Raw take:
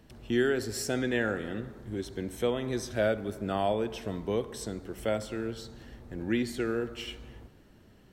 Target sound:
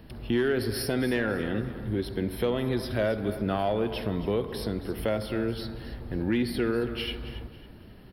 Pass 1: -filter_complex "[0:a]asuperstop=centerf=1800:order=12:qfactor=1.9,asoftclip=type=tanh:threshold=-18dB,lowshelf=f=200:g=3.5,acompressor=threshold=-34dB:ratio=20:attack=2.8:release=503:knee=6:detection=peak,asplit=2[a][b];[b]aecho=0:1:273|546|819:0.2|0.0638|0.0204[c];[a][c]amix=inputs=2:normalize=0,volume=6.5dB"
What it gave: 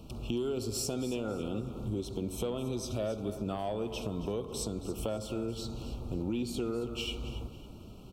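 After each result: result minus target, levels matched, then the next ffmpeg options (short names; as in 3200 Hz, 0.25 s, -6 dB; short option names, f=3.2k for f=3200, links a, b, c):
2000 Hz band -8.5 dB; compressor: peak gain reduction +7.5 dB
-filter_complex "[0:a]asuperstop=centerf=7000:order=12:qfactor=1.9,asoftclip=type=tanh:threshold=-18dB,lowshelf=f=200:g=3.5,acompressor=threshold=-34dB:ratio=20:attack=2.8:release=503:knee=6:detection=peak,asplit=2[a][b];[b]aecho=0:1:273|546|819:0.2|0.0638|0.0204[c];[a][c]amix=inputs=2:normalize=0,volume=6.5dB"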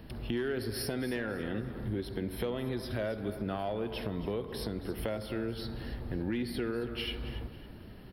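compressor: peak gain reduction +8 dB
-filter_complex "[0:a]asuperstop=centerf=7000:order=12:qfactor=1.9,asoftclip=type=tanh:threshold=-18dB,lowshelf=f=200:g=3.5,acompressor=threshold=-25.5dB:ratio=20:attack=2.8:release=503:knee=6:detection=peak,asplit=2[a][b];[b]aecho=0:1:273|546|819:0.2|0.0638|0.0204[c];[a][c]amix=inputs=2:normalize=0,volume=6.5dB"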